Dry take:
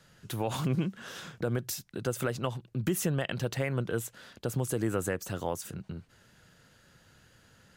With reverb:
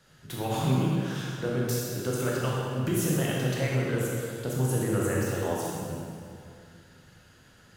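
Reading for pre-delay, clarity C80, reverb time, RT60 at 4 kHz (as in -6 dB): 16 ms, 0.0 dB, 2.4 s, 1.9 s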